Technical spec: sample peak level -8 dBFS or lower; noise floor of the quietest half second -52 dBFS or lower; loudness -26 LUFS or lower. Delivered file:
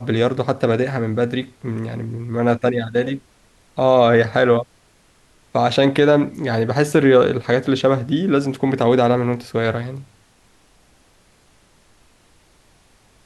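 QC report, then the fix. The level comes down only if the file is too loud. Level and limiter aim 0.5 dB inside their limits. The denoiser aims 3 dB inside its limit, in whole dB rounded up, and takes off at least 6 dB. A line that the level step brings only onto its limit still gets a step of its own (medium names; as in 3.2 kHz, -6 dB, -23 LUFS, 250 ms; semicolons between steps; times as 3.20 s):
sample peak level -3.5 dBFS: fail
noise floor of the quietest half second -55 dBFS: pass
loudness -18.0 LUFS: fail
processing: trim -8.5 dB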